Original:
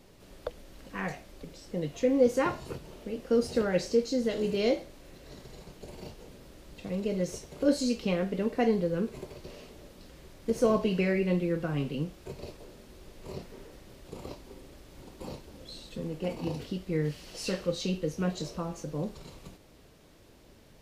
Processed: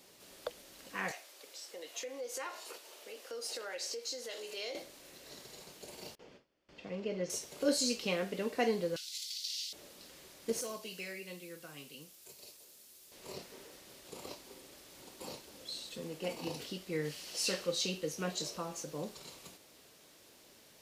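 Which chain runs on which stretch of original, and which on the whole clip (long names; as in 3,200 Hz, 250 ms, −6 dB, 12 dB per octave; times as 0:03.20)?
0:01.11–0:04.75: Bessel high-pass filter 550 Hz, order 4 + downward compressor 2.5 to 1, threshold −39 dBFS
0:06.15–0:07.30: notch filter 3,900 Hz, Q 7.4 + noise gate with hold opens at −38 dBFS, closes at −42 dBFS + high-frequency loss of the air 200 metres
0:08.96–0:09.73: Chebyshev high-pass with heavy ripple 1,400 Hz, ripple 9 dB + high shelf with overshoot 2,400 Hz +12.5 dB, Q 3
0:10.61–0:13.12: first-order pre-emphasis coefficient 0.8 + gain into a clipping stage and back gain 30.5 dB
whole clip: high-pass filter 420 Hz 6 dB per octave; high-shelf EQ 3,200 Hz +9.5 dB; level −2.5 dB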